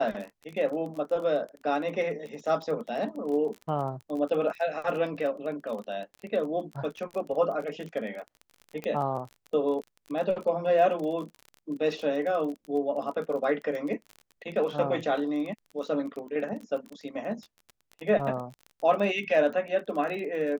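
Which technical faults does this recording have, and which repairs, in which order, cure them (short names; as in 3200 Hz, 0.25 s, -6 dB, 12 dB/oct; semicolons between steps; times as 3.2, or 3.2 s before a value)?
crackle 26/s -35 dBFS
8.84 pop -21 dBFS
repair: de-click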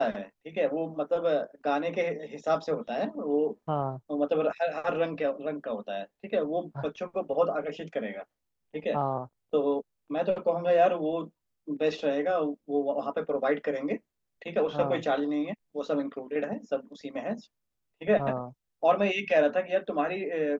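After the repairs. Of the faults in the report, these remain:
none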